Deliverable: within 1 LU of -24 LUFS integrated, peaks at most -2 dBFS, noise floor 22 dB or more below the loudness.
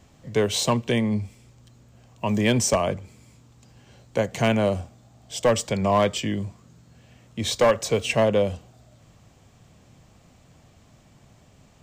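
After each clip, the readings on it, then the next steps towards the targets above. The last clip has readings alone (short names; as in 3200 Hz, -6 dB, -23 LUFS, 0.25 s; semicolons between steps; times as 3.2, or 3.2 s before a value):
clipped 0.3%; flat tops at -12.5 dBFS; loudness -23.5 LUFS; peak -12.5 dBFS; loudness target -24.0 LUFS
-> clip repair -12.5 dBFS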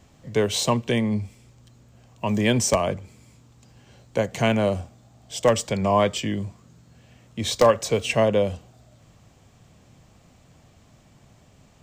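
clipped 0.0%; loudness -23.0 LUFS; peak -3.5 dBFS; loudness target -24.0 LUFS
-> gain -1 dB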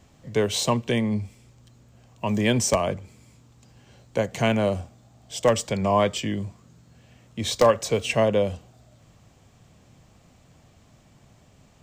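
loudness -24.0 LUFS; peak -4.5 dBFS; noise floor -57 dBFS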